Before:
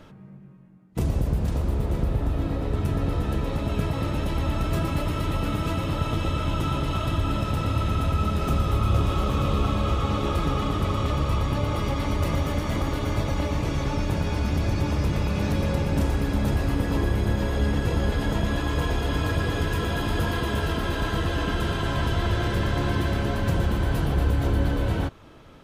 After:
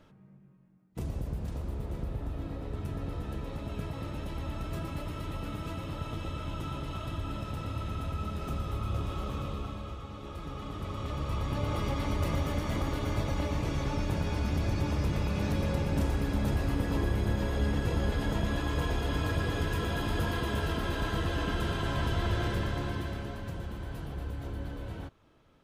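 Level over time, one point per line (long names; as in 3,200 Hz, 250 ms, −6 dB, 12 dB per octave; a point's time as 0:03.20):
0:09.34 −11 dB
0:10.11 −18.5 dB
0:11.73 −5.5 dB
0:22.46 −5.5 dB
0:23.53 −15 dB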